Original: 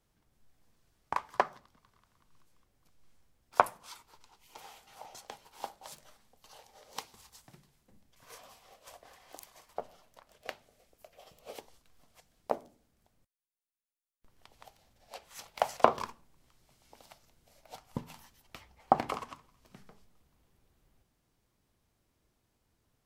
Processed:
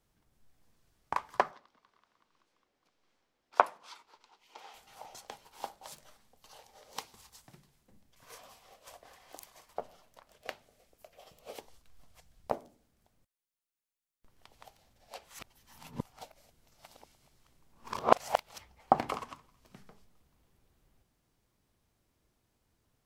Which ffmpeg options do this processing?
ffmpeg -i in.wav -filter_complex "[0:a]asettb=1/sr,asplit=3[link_01][link_02][link_03];[link_01]atrim=end=1.514[link_04];[link_02]atrim=start=1.51:end=4.74,asetpts=PTS-STARTPTS,afade=type=in:duration=0.004:curve=qsin,afade=type=out:start_time=3.226:duration=0.004:curve=qsin,acrossover=split=240 5900:gain=0.112 1 0.178[link_05][link_06][link_07];[link_05][link_06][link_07]amix=inputs=3:normalize=0[link_08];[link_03]atrim=start=4.736[link_09];[link_04][link_08]acrossfade=duration=0.004:curve1=hsin:curve2=qsin[link_10];[link_10][link_09]acrossfade=duration=0.004:curve1=qsin:curve2=hsin,asettb=1/sr,asplit=3[link_11][link_12][link_13];[link_11]atrim=end=11.564[link_14];[link_12]atrim=start=11.56:end=12.53,asetpts=PTS-STARTPTS,afade=type=in:duration=0.004:curve=qsin,afade=type=out:start_time=0.966:duration=0.004:curve=qsin,asubboost=boost=11.5:cutoff=140[link_15];[link_13]atrim=start=12.526[link_16];[link_14][link_15]acrossfade=duration=0.004:curve1=hsin:curve2=qsin[link_17];[link_17][link_16]acrossfade=duration=0.004:curve1=qsin:curve2=hsin,asplit=3[link_18][link_19][link_20];[link_18]atrim=end=15.392[link_21];[link_19]atrim=start=15.388:end=18.582,asetpts=PTS-STARTPTS,areverse[link_22];[link_20]atrim=start=18.578[link_23];[link_21][link_22]acrossfade=duration=0.004:curve1=hsin:curve2=hsin[link_24];[link_24][link_23]acrossfade=duration=0.004:curve1=hsin:curve2=hsin" out.wav

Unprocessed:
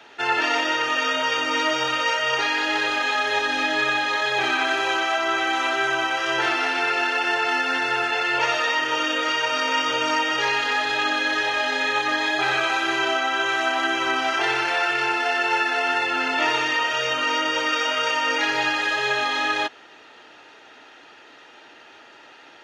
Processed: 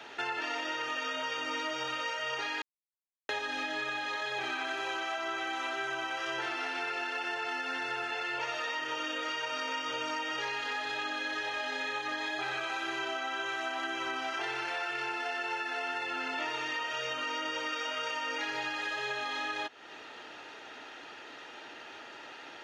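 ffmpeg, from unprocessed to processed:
ffmpeg -i in.wav -filter_complex "[0:a]asplit=3[link_01][link_02][link_03];[link_01]atrim=end=2.62,asetpts=PTS-STARTPTS,afade=type=out:start_time=2.616:duration=0.004:curve=hsin[link_04];[link_02]atrim=start=2.62:end=3.29,asetpts=PTS-STARTPTS,volume=0[link_05];[link_03]atrim=start=3.29,asetpts=PTS-STARTPTS,afade=type=in:duration=0.004:curve=hsin[link_06];[link_04][link_05][link_06]concat=n=3:v=0:a=1,acompressor=threshold=-35dB:ratio=4" out.wav

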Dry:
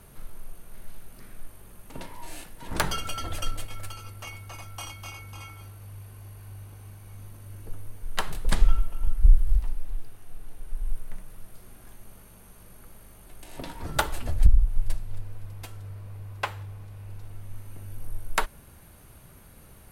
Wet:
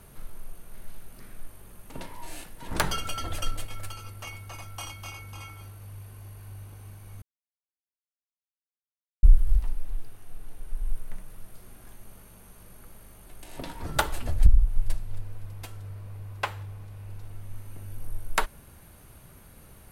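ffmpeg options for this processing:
ffmpeg -i in.wav -filter_complex "[0:a]asplit=3[link_01][link_02][link_03];[link_01]atrim=end=7.22,asetpts=PTS-STARTPTS,afade=type=out:start_time=7.216:duration=0.004:curve=hsin[link_04];[link_02]atrim=start=7.22:end=9.23,asetpts=PTS-STARTPTS,volume=0[link_05];[link_03]atrim=start=9.23,asetpts=PTS-STARTPTS,afade=type=in:duration=0.004:curve=hsin[link_06];[link_04][link_05][link_06]concat=n=3:v=0:a=1" out.wav

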